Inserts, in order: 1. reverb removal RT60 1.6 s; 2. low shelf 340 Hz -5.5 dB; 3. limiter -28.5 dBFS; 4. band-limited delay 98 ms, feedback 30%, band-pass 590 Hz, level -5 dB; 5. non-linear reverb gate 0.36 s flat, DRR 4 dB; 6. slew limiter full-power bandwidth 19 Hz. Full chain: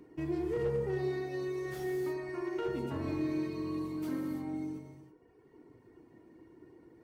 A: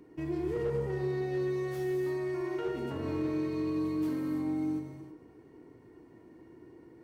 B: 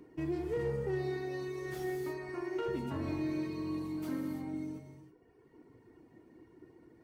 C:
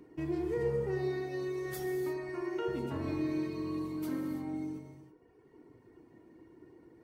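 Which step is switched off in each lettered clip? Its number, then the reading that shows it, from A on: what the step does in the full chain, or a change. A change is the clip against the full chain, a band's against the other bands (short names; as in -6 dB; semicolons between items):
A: 1, crest factor change -2.5 dB; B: 4, 500 Hz band -1.5 dB; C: 6, distortion -23 dB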